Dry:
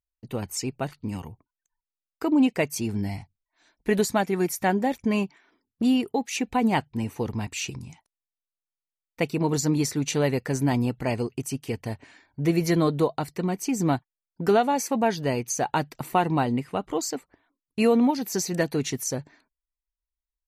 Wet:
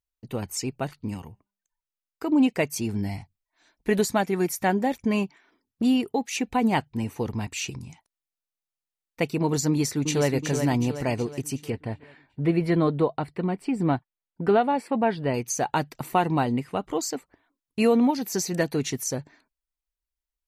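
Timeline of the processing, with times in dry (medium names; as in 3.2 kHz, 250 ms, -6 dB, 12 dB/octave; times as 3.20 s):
1.14–2.30 s: feedback comb 200 Hz, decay 0.5 s, mix 30%
9.68–10.29 s: echo throw 370 ms, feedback 50%, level -6.5 dB
11.70–15.34 s: boxcar filter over 7 samples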